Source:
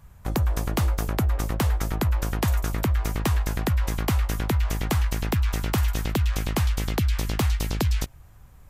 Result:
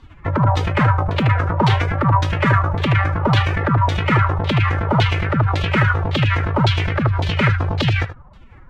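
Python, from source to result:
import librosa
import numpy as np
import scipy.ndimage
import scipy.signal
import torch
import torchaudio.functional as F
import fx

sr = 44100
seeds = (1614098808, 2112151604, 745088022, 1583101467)

y = x + 10.0 ** (-11.5 / 20.0) * np.pad(x, (int(77 * sr / 1000.0), 0))[:len(x)]
y = fx.pitch_keep_formants(y, sr, semitones=10.0)
y = fx.filter_lfo_lowpass(y, sr, shape='saw_down', hz=1.8, low_hz=810.0, high_hz=3900.0, q=2.7)
y = y * 10.0 ** (7.0 / 20.0)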